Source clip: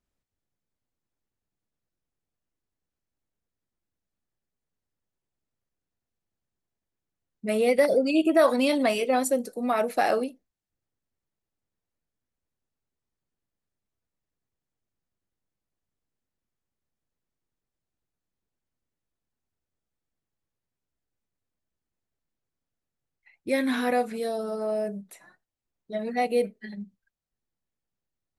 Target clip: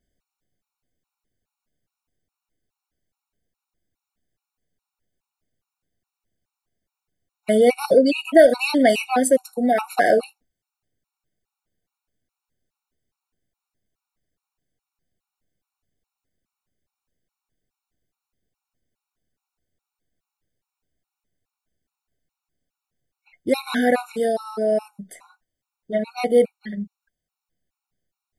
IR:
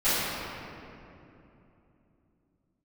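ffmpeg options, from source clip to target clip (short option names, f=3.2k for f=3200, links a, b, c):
-af "acontrast=32,afftfilt=real='re*gt(sin(2*PI*2.4*pts/sr)*(1-2*mod(floor(b*sr/1024/740),2)),0)':imag='im*gt(sin(2*PI*2.4*pts/sr)*(1-2*mod(floor(b*sr/1024/740),2)),0)':win_size=1024:overlap=0.75,volume=3.5dB"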